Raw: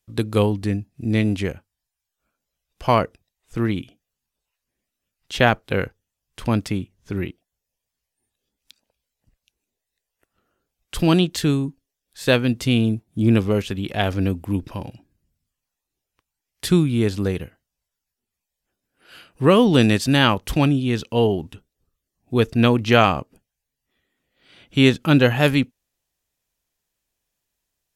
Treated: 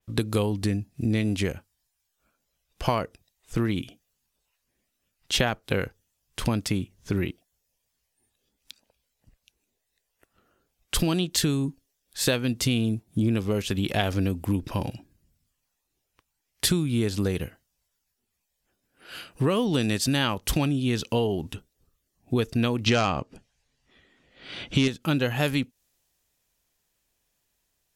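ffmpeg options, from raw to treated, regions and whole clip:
ffmpeg -i in.wav -filter_complex "[0:a]asettb=1/sr,asplit=3[link_01][link_02][link_03];[link_01]atrim=end=22.864[link_04];[link_02]atrim=start=22.86:end=24.88,asetpts=PTS-STARTPTS,afade=type=in:duration=0.004:curve=qsin,afade=type=out:start_time=2.016:duration=0.004:curve=qsin,lowpass=5600,aeval=exprs='0.891*sin(PI/2*1.58*val(0)/0.891)':channel_layout=same[link_05];[link_03]atrim=start=24.876[link_06];[link_04][link_05]acrossfade=duration=0.004:curve1=hsin:curve2=qsin[link_07];[link_07][link_06]acrossfade=duration=0.004:curve1=qsin:curve2=hsin,acompressor=threshold=-26dB:ratio=6,adynamicequalizer=threshold=0.00398:dfrequency=3600:dqfactor=0.7:tfrequency=3600:tqfactor=0.7:attack=5:release=100:ratio=0.375:range=3:mode=boostabove:tftype=highshelf,volume=4dB" out.wav

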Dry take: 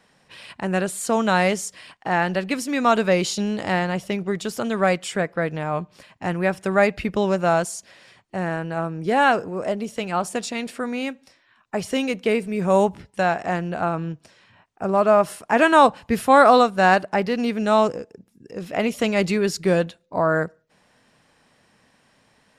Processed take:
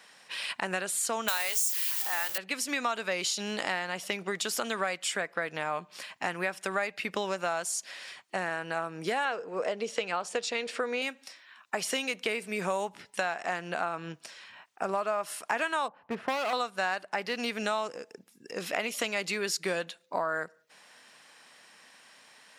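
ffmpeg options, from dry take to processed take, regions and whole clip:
ffmpeg -i in.wav -filter_complex "[0:a]asettb=1/sr,asplit=3[link_01][link_02][link_03];[link_01]atrim=end=1.284[link_04];[link_02]atrim=start=1.28:end=2.38,asetpts=PTS-STARTPTS,afade=type=in:duration=0.004:curve=qsin,afade=type=out:start_time=1.096:duration=0.004:curve=qsin,aeval=exprs='val(0)+0.5*0.0447*sgn(val(0))':channel_layout=same,highpass=270,aemphasis=mode=production:type=riaa[link_05];[link_03]atrim=start=2.376[link_06];[link_04][link_05]acrossfade=duration=0.004:curve1=hsin:curve2=qsin[link_07];[link_07][link_06]acrossfade=duration=0.004:curve1=qsin:curve2=hsin,asettb=1/sr,asplit=3[link_08][link_09][link_10];[link_08]atrim=end=9.254[link_11];[link_09]atrim=start=9.25:end=11.02,asetpts=PTS-STARTPTS,afade=type=in:duration=0.004:curve=qsin,afade=type=out:start_time=1.766:duration=0.004:curve=qsin,lowpass=6000,equalizer=frequency=470:width_type=o:width=0.27:gain=11[link_12];[link_10]atrim=start=11.016[link_13];[link_11][link_12]acrossfade=duration=0.004:curve1=hsin:curve2=qsin[link_14];[link_14][link_13]acrossfade=duration=0.004:curve1=qsin:curve2=hsin,asettb=1/sr,asplit=3[link_15][link_16][link_17];[link_15]atrim=end=15.884[link_18];[link_16]atrim=start=15.88:end=16.53,asetpts=PTS-STARTPTS,afade=type=in:duration=0.004:curve=qsin,afade=type=out:start_time=0.646:duration=0.004:curve=qsin,lowpass=1100,volume=16dB,asoftclip=hard,volume=-16dB[link_19];[link_17]atrim=start=16.526[link_20];[link_18][link_19]acrossfade=duration=0.004:curve1=hsin:curve2=qsin[link_21];[link_21][link_20]acrossfade=duration=0.004:curve1=qsin:curve2=hsin,highpass=190,tiltshelf=frequency=670:gain=-8,acompressor=threshold=-28dB:ratio=6" out.wav

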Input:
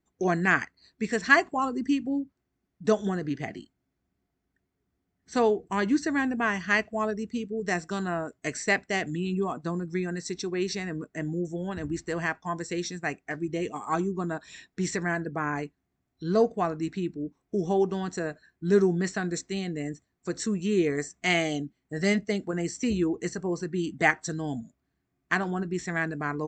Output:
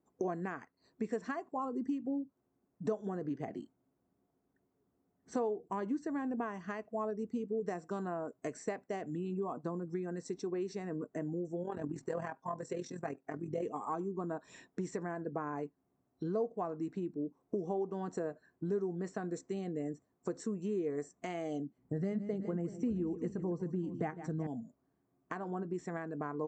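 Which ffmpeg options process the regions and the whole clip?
ffmpeg -i in.wav -filter_complex "[0:a]asettb=1/sr,asplit=3[link_01][link_02][link_03];[link_01]atrim=end=11.634[link_04];[link_02]atrim=start=11.63:end=13.63,asetpts=PTS-STARTPTS,afade=type=in:duration=0.004:curve=qsin,afade=type=out:start_time=1.996:duration=0.004:curve=qsin,aecho=1:1:7.5:0.68,atrim=end_sample=88200,tremolo=f=42:d=0.621[link_05];[link_03]atrim=start=13.626[link_06];[link_04][link_05]acrossfade=duration=0.004:curve1=hsin:curve2=qsin[link_07];[link_07][link_06]acrossfade=duration=0.004:curve1=qsin:curve2=hsin,asettb=1/sr,asplit=3[link_08][link_09][link_10];[link_08]atrim=end=21.784[link_11];[link_09]atrim=start=21.78:end=24.47,asetpts=PTS-STARTPTS,afade=type=in:duration=0.004:curve=qsin,afade=type=out:start_time=2.686:duration=0.004:curve=qsin,bass=frequency=250:gain=13,treble=frequency=4000:gain=-6,bandreject=frequency=67.83:width_type=h:width=4,bandreject=frequency=135.66:width_type=h:width=4,bandreject=frequency=203.49:width_type=h:width=4,bandreject=frequency=271.32:width_type=h:width=4,aecho=1:1:154|382:0.168|0.158,atrim=end_sample=118629[link_12];[link_10]atrim=start=24.466[link_13];[link_11][link_12]acrossfade=duration=0.004:curve1=hsin:curve2=qsin[link_14];[link_14][link_13]acrossfade=duration=0.004:curve1=qsin:curve2=hsin,lowshelf=frequency=150:gain=-7,acompressor=threshold=-40dB:ratio=4,equalizer=frequency=125:width_type=o:width=1:gain=7,equalizer=frequency=250:width_type=o:width=1:gain=7,equalizer=frequency=500:width_type=o:width=1:gain=10,equalizer=frequency=1000:width_type=o:width=1:gain=8,equalizer=frequency=2000:width_type=o:width=1:gain=-4,equalizer=frequency=4000:width_type=o:width=1:gain=-7,volume=-5.5dB" out.wav

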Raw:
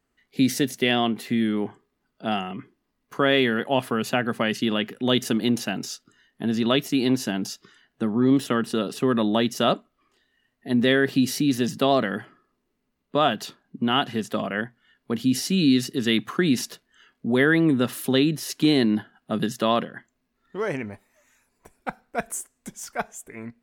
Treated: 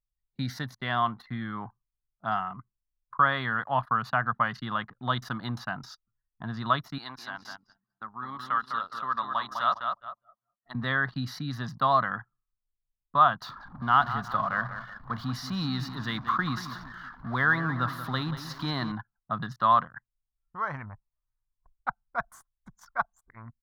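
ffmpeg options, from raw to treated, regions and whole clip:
ffmpeg -i in.wav -filter_complex "[0:a]asettb=1/sr,asplit=3[link_01][link_02][link_03];[link_01]atrim=end=6.984[link_04];[link_02]atrim=start=6.98:end=10.75,asetpts=PTS-STARTPTS,afade=type=in:duration=0.004:curve=qsin,afade=type=out:start_time=3.766:duration=0.004:curve=qsin,highpass=frequency=1200:poles=1,asplit=2[link_05][link_06];[link_06]adelay=204,lowpass=frequency=4800:poles=1,volume=-5dB,asplit=2[link_07][link_08];[link_08]adelay=204,lowpass=frequency=4800:poles=1,volume=0.42,asplit=2[link_09][link_10];[link_10]adelay=204,lowpass=frequency=4800:poles=1,volume=0.42,asplit=2[link_11][link_12];[link_12]adelay=204,lowpass=frequency=4800:poles=1,volume=0.42,asplit=2[link_13][link_14];[link_14]adelay=204,lowpass=frequency=4800:poles=1,volume=0.42[link_15];[link_05][link_07][link_09][link_11][link_13][link_15]amix=inputs=6:normalize=0,atrim=end_sample=166257[link_16];[link_03]atrim=start=10.746[link_17];[link_04][link_16]acrossfade=duration=0.004:curve1=hsin:curve2=qsin[link_18];[link_18][link_17]acrossfade=duration=0.004:curve1=qsin:curve2=hsin,asettb=1/sr,asplit=3[link_19][link_20][link_21];[link_19]atrim=end=13.424[link_22];[link_20]atrim=start=13.42:end=18.92,asetpts=PTS-STARTPTS,afade=type=in:duration=0.004:curve=qsin,afade=type=out:start_time=5.496:duration=0.004:curve=qsin,aeval=exprs='val(0)+0.5*0.02*sgn(val(0))':channel_layout=same,asplit=2[link_23][link_24];[link_24]adelay=183,lowpass=frequency=4000:poles=1,volume=-11dB,asplit=2[link_25][link_26];[link_26]adelay=183,lowpass=frequency=4000:poles=1,volume=0.49,asplit=2[link_27][link_28];[link_28]adelay=183,lowpass=frequency=4000:poles=1,volume=0.49,asplit=2[link_29][link_30];[link_30]adelay=183,lowpass=frequency=4000:poles=1,volume=0.49,asplit=2[link_31][link_32];[link_32]adelay=183,lowpass=frequency=4000:poles=1,volume=0.49[link_33];[link_23][link_25][link_27][link_29][link_31][link_33]amix=inputs=6:normalize=0,atrim=end_sample=242550[link_34];[link_21]atrim=start=18.916[link_35];[link_22][link_34]acrossfade=duration=0.004:curve1=hsin:curve2=qsin[link_36];[link_36][link_35]acrossfade=duration=0.004:curve1=qsin:curve2=hsin,anlmdn=2.51,firequalizer=gain_entry='entry(120,0);entry(200,-12);entry(400,-23);entry(650,-7);entry(1100,9);entry(2600,-19);entry(4000,-6);entry(7900,-27);entry(15000,-16)':delay=0.05:min_phase=1" out.wav

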